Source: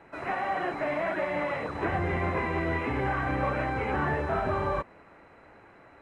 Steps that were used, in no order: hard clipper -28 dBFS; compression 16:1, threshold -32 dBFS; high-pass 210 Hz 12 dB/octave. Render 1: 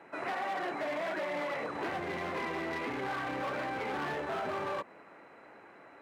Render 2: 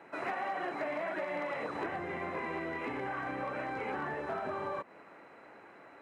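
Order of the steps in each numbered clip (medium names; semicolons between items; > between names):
hard clipper > compression > high-pass; compression > high-pass > hard clipper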